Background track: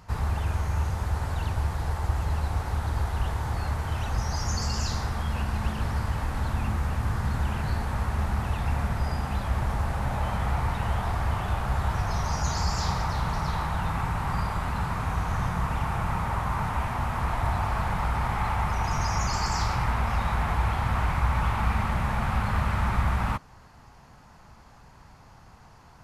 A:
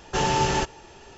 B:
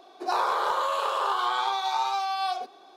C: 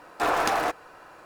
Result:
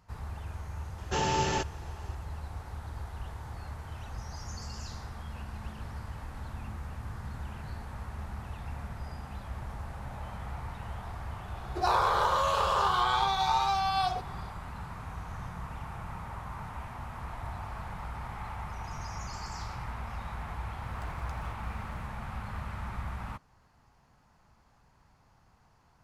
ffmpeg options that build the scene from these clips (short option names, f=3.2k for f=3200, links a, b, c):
-filter_complex "[0:a]volume=-12.5dB[a];[1:a]highpass=53[b];[3:a]acompressor=threshold=-43dB:ratio=6:attack=3.2:release=140:knee=1:detection=peak[c];[b]atrim=end=1.17,asetpts=PTS-STARTPTS,volume=-6dB,afade=t=in:d=0.004:c=hsin,afade=t=out:st=1.166:d=0.004:c=hsin,adelay=980[d];[2:a]atrim=end=2.96,asetpts=PTS-STARTPTS,volume=-0.5dB,afade=t=in:d=0.004:c=hsin,afade=t=out:st=2.956:d=0.004:c=hsin,adelay=11550[e];[c]atrim=end=1.25,asetpts=PTS-STARTPTS,volume=-4.5dB,afade=t=in:d=0.004:c=hsin,afade=t=out:st=1.246:d=0.004:c=hsin,adelay=20820[f];[a][d][e][f]amix=inputs=4:normalize=0"